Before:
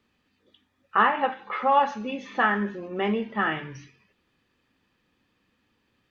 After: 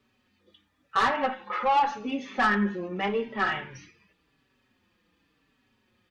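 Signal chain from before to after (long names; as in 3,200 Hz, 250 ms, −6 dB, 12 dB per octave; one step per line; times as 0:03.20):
soft clipping −19 dBFS, distortion −11 dB
barber-pole flanger 4.8 ms −0.89 Hz
level +4 dB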